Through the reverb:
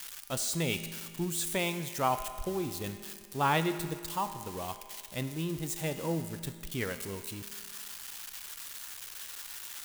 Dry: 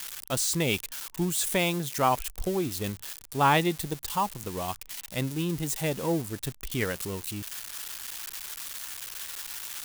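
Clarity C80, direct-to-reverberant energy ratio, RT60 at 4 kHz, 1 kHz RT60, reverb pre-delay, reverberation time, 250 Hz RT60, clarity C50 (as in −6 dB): 11.0 dB, 8.5 dB, 1.8 s, 1.9 s, 5 ms, 1.9 s, 1.9 s, 10.5 dB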